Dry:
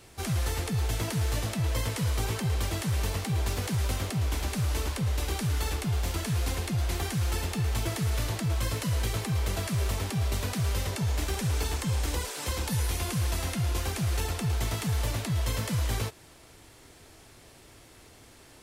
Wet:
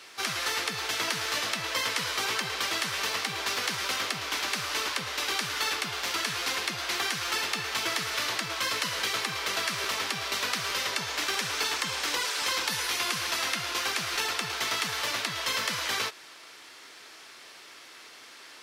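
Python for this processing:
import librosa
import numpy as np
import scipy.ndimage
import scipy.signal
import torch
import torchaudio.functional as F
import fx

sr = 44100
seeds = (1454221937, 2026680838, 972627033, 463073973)

y = scipy.signal.sosfilt(scipy.signal.butter(2, 360.0, 'highpass', fs=sr, output='sos'), x)
y = fx.band_shelf(y, sr, hz=2500.0, db=9.5, octaves=2.8)
y = fx.buffer_crackle(y, sr, first_s=0.37, period_s=0.86, block=512, kind='repeat')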